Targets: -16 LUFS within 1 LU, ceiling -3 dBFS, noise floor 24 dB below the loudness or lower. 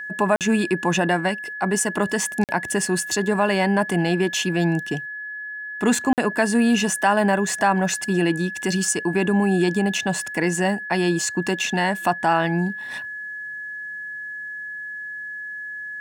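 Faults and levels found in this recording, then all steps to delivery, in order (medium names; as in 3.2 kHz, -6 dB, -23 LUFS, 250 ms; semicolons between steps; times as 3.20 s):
dropouts 3; longest dropout 48 ms; steady tone 1.7 kHz; tone level -30 dBFS; loudness -22.5 LUFS; peak level -6.0 dBFS; loudness target -16.0 LUFS
-> interpolate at 0.36/2.44/6.13 s, 48 ms; band-stop 1.7 kHz, Q 30; trim +6.5 dB; peak limiter -3 dBFS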